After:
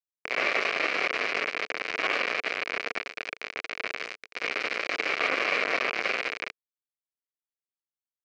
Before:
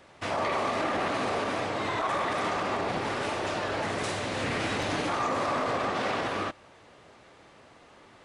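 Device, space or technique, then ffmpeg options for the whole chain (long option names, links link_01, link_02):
hand-held game console: -filter_complex "[0:a]asettb=1/sr,asplit=3[link_01][link_02][link_03];[link_01]atrim=end=2.404[link_04];[link_02]atrim=start=2.4:end=3.9,asetpts=PTS-STARTPTS,afade=type=in:duration=0.004:curve=qsin,afade=type=out:start_time=1.496:duration=0.004:curve=qsin,adynamicequalizer=threshold=0.00501:dfrequency=1100:dqfactor=2.6:tfrequency=1100:tqfactor=2.6:attack=5:release=100:ratio=0.375:range=1.5:mode=cutabove:tftype=bell[link_05];[link_03]atrim=start=3.896[link_06];[link_04][link_05]acrossfade=duration=0.004:curve1=hsin:curve2=qsin[link_07];[link_07][link_06]acrossfade=duration=0.004:curve1=qsin:curve2=hsin,acrusher=bits=3:mix=0:aa=0.000001,highpass=410,equalizer=frequency=450:width_type=q:width=4:gain=5,equalizer=frequency=890:width_type=q:width=4:gain=-10,equalizer=frequency=2300:width_type=q:width=4:gain=9,equalizer=frequency=3500:width_type=q:width=4:gain=-9,lowpass=frequency=4300:width=0.5412,lowpass=frequency=4300:width=1.3066,volume=2.5dB"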